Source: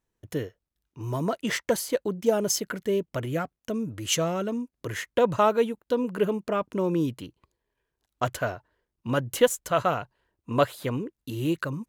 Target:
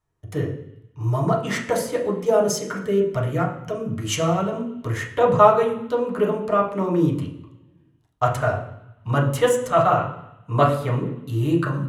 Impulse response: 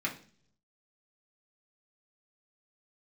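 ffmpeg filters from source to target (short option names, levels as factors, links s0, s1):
-filter_complex "[1:a]atrim=start_sample=2205,asetrate=23373,aresample=44100[s0];[0:a][s0]afir=irnorm=-1:irlink=0,volume=0.631"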